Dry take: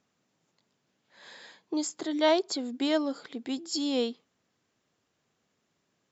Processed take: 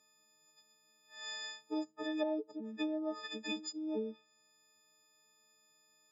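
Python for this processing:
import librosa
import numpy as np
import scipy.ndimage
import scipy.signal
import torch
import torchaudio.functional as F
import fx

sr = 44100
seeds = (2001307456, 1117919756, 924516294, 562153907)

y = fx.freq_snap(x, sr, grid_st=6)
y = fx.env_lowpass_down(y, sr, base_hz=350.0, full_db=-21.0)
y = fx.bass_treble(y, sr, bass_db=-8, treble_db=3)
y = F.gain(torch.from_numpy(y), -4.0).numpy()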